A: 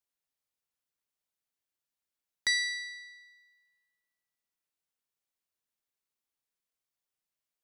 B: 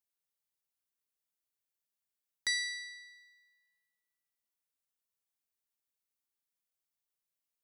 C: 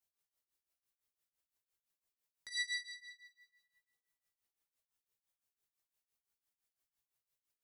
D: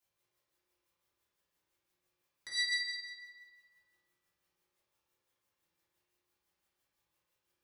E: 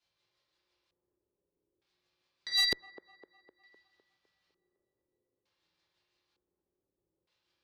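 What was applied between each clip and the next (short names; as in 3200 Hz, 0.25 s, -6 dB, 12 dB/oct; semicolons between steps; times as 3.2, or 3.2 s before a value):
high shelf 7500 Hz +7.5 dB; gain -5.5 dB
limiter -32 dBFS, peak gain reduction 11 dB; chorus voices 6, 0.46 Hz, delay 18 ms, depth 1.7 ms; tremolo triangle 5.9 Hz, depth 95%; gain +7.5 dB
reverb RT60 2.0 s, pre-delay 3 ms, DRR -9 dB; gain +2.5 dB
LFO low-pass square 0.55 Hz 400–4300 Hz; one-sided clip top -25 dBFS; band-limited delay 0.254 s, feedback 54%, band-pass 630 Hz, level -10.5 dB; gain +2 dB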